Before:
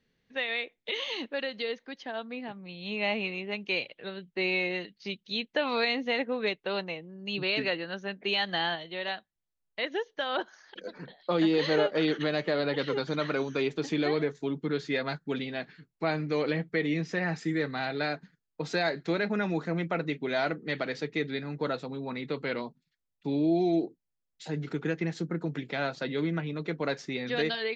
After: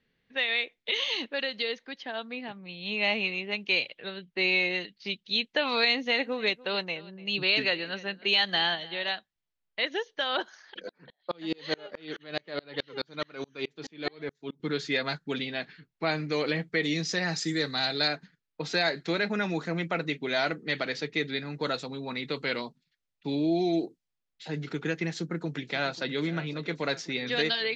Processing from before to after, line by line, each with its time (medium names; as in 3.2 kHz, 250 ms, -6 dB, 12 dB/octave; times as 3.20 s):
5.80–9.12 s: delay 295 ms -20.5 dB
10.89–14.60 s: sawtooth tremolo in dB swelling 4.7 Hz, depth 35 dB
16.83–18.08 s: resonant high shelf 3.3 kHz +7 dB, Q 1.5
21.54–23.35 s: treble shelf 5.9 kHz +8.5 dB
25.13–26.21 s: echo throw 540 ms, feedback 75%, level -16.5 dB
whole clip: level-controlled noise filter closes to 2.8 kHz, open at -24.5 dBFS; treble shelf 2.2 kHz +10 dB; trim -1 dB